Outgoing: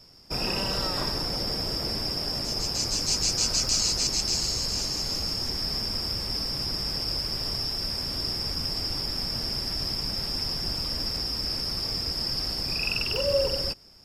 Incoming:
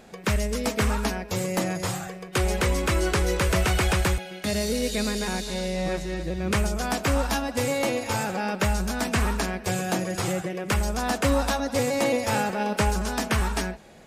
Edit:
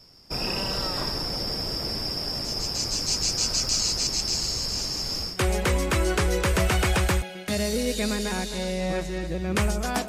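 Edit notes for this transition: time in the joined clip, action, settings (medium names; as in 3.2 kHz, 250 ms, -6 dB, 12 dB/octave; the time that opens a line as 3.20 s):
outgoing
5.32 s: go over to incoming from 2.28 s, crossfade 0.20 s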